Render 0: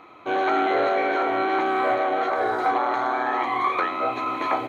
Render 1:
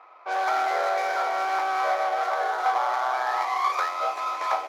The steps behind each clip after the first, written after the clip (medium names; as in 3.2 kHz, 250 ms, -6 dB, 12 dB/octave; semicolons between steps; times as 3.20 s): median filter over 15 samples; high-pass 600 Hz 24 dB/octave; level-controlled noise filter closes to 2.2 kHz, open at -24.5 dBFS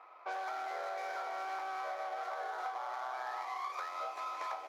compression 10:1, threshold -31 dBFS, peak gain reduction 12.5 dB; trim -5.5 dB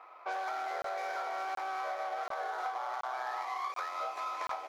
crackling interface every 0.73 s, samples 1024, zero, from 0.82 s; trim +3 dB